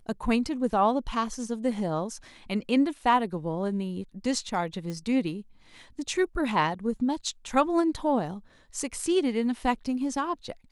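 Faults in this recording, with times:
4.90 s: pop -23 dBFS

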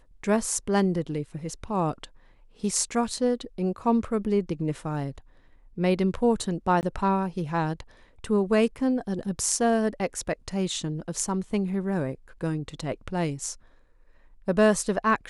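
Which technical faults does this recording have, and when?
6.81–6.83 s: dropout 19 ms

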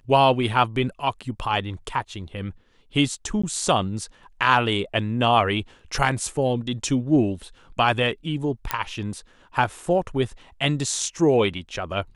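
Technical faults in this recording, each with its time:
3.42–3.44 s: dropout 15 ms
8.71 s: pop -6 dBFS

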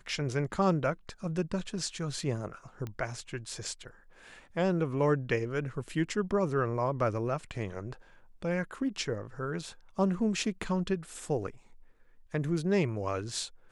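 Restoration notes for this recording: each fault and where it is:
2.87 s: pop -25 dBFS

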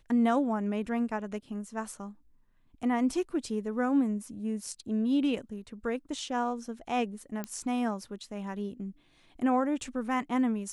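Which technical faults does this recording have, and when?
7.44 s: pop -20 dBFS

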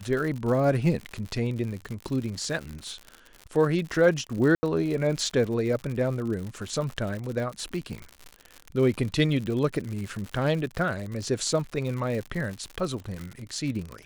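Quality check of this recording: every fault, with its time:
crackle 97 per s -32 dBFS
4.55–4.63 s: dropout 80 ms

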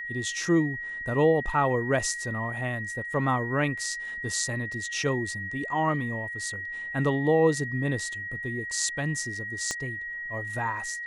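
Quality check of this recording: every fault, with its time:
whine 1.9 kHz -33 dBFS
9.71 s: pop -16 dBFS

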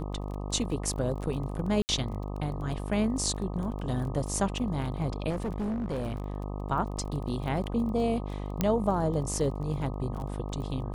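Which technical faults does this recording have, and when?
buzz 50 Hz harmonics 25 -35 dBFS
crackle 20 per s -37 dBFS
1.82–1.89 s: dropout 69 ms
5.29–6.36 s: clipped -28 dBFS
8.61 s: pop -11 dBFS

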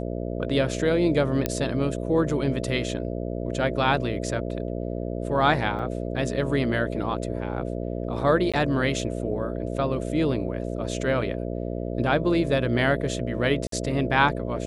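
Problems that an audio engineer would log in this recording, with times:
buzz 60 Hz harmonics 11 -30 dBFS
1.46 s: pop -9 dBFS
5.79 s: dropout 2.5 ms
8.52–8.54 s: dropout 16 ms
13.67–13.72 s: dropout 53 ms

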